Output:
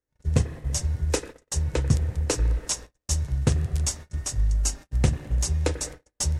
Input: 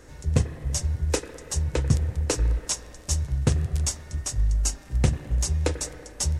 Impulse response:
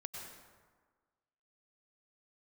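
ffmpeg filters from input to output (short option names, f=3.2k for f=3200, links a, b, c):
-af "agate=range=-40dB:threshold=-37dB:ratio=16:detection=peak"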